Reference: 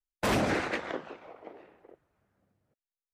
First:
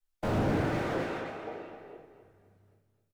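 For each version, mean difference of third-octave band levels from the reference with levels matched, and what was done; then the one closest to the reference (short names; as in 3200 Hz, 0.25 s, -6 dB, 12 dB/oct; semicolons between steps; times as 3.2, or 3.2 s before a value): 8.5 dB: compressor, threshold -29 dBFS, peak gain reduction 5.5 dB; on a send: feedback echo 0.262 s, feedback 35%, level -9.5 dB; on the sum: shoebox room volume 57 m³, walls mixed, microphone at 1.2 m; slew limiter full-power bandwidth 24 Hz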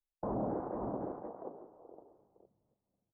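11.5 dB: echo 0.512 s -8.5 dB; limiter -26 dBFS, peak gain reduction 7 dB; steep low-pass 1000 Hz 36 dB/oct; bell 84 Hz -9.5 dB 0.36 oct; gain -1.5 dB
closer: first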